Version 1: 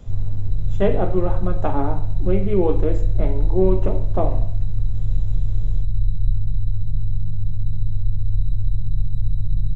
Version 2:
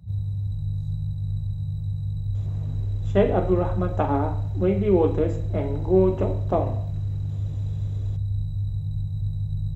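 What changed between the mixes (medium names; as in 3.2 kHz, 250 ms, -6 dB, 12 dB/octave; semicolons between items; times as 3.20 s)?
speech: entry +2.35 s; master: add high-pass 53 Hz 24 dB/octave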